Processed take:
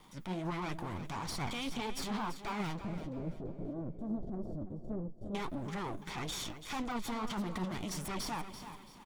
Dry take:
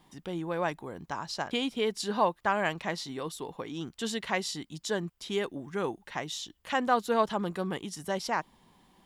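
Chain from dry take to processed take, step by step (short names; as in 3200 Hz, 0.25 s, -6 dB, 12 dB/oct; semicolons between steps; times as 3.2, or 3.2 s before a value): minimum comb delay 0.89 ms; de-esser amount 90%; 2.8–5.35 elliptic low-pass 650 Hz, stop band 40 dB; transient shaper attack -7 dB, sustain +7 dB; compressor, threshold -37 dBFS, peak gain reduction 12 dB; soft clip -36 dBFS, distortion -16 dB; flange 1.6 Hz, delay 1.8 ms, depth 9.2 ms, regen +48%; feedback echo 0.336 s, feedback 34%, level -11.5 dB; Doppler distortion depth 0.16 ms; gain +8.5 dB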